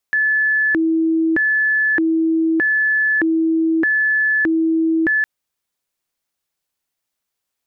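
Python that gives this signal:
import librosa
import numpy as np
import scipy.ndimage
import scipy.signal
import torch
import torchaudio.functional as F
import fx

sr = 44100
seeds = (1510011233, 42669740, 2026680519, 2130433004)

y = fx.siren(sr, length_s=5.11, kind='hi-lo', low_hz=324.0, high_hz=1730.0, per_s=0.81, wave='sine', level_db=-13.5)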